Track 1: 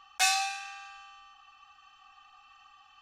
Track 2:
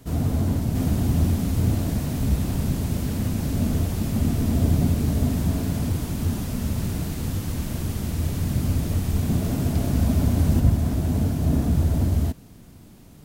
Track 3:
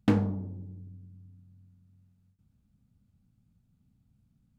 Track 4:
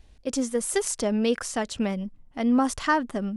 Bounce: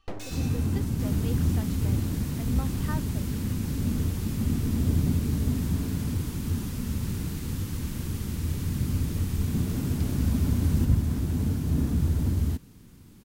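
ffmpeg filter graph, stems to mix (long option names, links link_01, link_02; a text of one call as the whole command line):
ffmpeg -i stem1.wav -i stem2.wav -i stem3.wav -i stem4.wav -filter_complex "[0:a]equalizer=frequency=460:width=0.35:gain=-14,asoftclip=type=hard:threshold=-32.5dB,volume=-8.5dB[link_01];[1:a]equalizer=frequency=660:width=2.9:gain=-12,adelay=250,volume=-4dB[link_02];[2:a]aeval=exprs='abs(val(0))':channel_layout=same,volume=-10.5dB[link_03];[3:a]deesser=0.65,volume=-15.5dB[link_04];[link_01][link_02][link_03][link_04]amix=inputs=4:normalize=0" out.wav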